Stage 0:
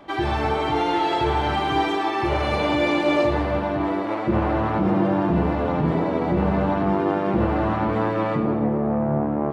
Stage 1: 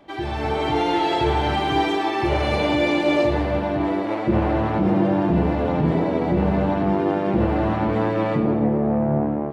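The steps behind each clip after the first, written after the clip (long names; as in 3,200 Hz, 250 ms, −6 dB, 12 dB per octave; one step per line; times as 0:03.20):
automatic gain control gain up to 7 dB
parametric band 1,200 Hz −5.5 dB 0.76 octaves
level −4 dB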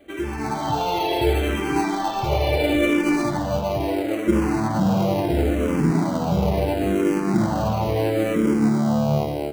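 in parallel at −7.5 dB: decimation without filtering 25×
on the sum: frequency shifter mixed with the dry sound −0.73 Hz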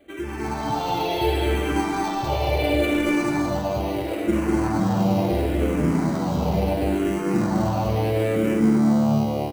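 multi-tap delay 200/245 ms −4.5/−5 dB
level −3.5 dB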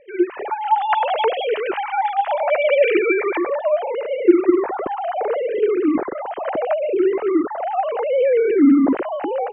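three sine waves on the formant tracks
high-frequency loss of the air 170 metres
level +3.5 dB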